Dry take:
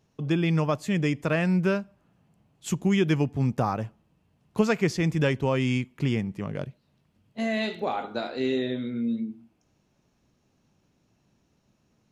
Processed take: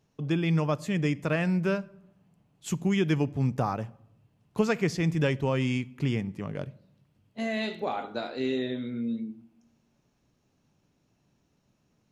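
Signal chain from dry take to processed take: simulated room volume 2200 m³, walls furnished, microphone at 0.34 m; trim -2.5 dB

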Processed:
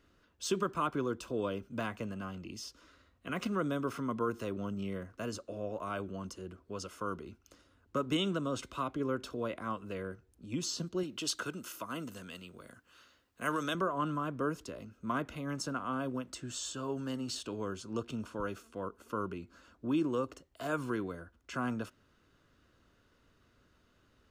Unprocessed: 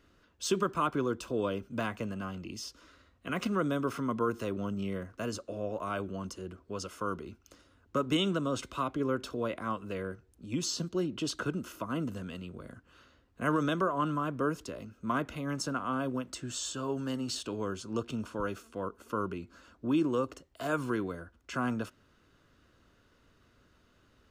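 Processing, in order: 11.03–13.75 s: tilt EQ +2.5 dB/octave; trim -3 dB

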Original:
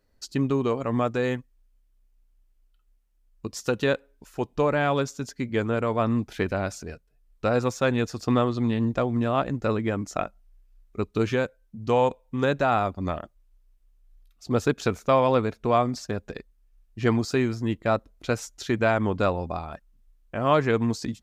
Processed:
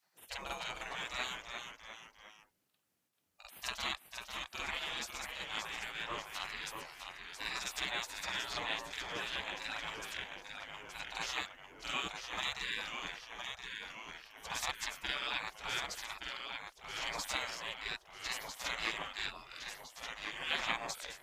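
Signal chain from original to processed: reverse echo 46 ms -3.5 dB; spectral gate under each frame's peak -25 dB weak; ever faster or slower copies 276 ms, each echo -1 st, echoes 3, each echo -6 dB; trim +1.5 dB

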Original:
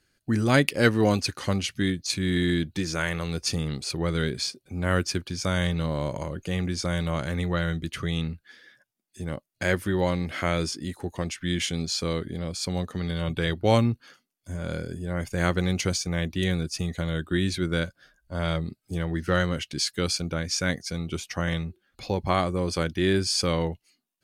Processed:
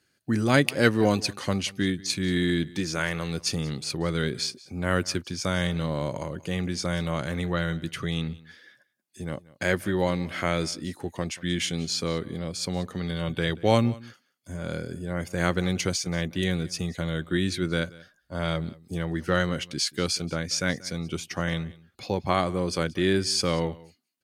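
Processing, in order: high-pass 99 Hz; on a send: delay 184 ms -21.5 dB

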